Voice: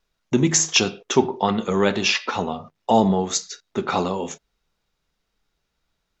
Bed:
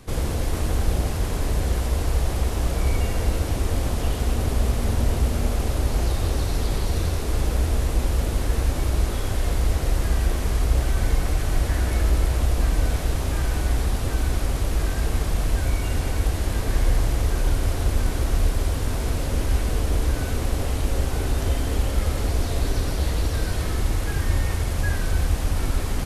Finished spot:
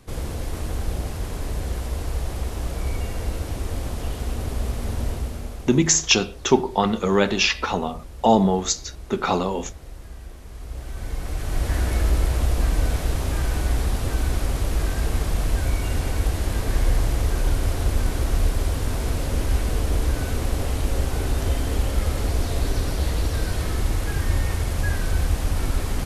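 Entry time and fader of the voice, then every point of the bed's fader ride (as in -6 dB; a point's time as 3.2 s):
5.35 s, +0.5 dB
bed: 5.08 s -4.5 dB
5.98 s -17.5 dB
10.45 s -17.5 dB
11.74 s 0 dB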